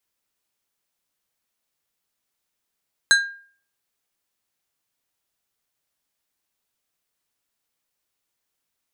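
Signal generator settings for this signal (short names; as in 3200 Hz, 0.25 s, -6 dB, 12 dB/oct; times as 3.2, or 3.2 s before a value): glass hit plate, lowest mode 1610 Hz, decay 0.47 s, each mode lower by 3.5 dB, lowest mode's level -10 dB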